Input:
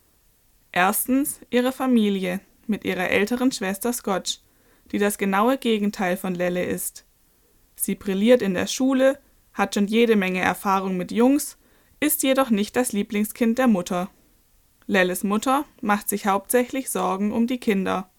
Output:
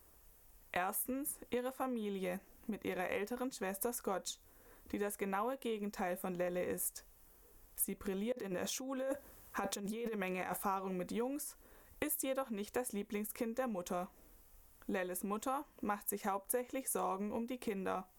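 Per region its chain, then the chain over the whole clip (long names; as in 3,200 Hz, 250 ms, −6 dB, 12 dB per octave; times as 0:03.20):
0:08.32–0:10.57: high-pass filter 61 Hz + compressor whose output falls as the input rises −27 dBFS
whole clip: downward compressor 12 to 1, threshold −30 dBFS; octave-band graphic EQ 125/250/2,000/4,000/8,000 Hz −8/−6/−4/−9/−3 dB; level −1 dB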